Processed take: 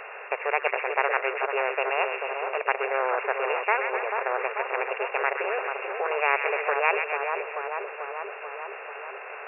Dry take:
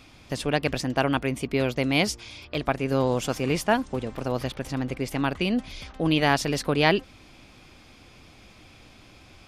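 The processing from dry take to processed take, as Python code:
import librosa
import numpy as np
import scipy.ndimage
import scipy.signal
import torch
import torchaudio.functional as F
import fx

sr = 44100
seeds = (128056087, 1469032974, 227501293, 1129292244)

y = fx.echo_split(x, sr, split_hz=1200.0, low_ms=439, high_ms=128, feedback_pct=52, wet_db=-9)
y = fx.formant_shift(y, sr, semitones=4)
y = fx.brickwall_bandpass(y, sr, low_hz=390.0, high_hz=2800.0)
y = fx.spectral_comp(y, sr, ratio=2.0)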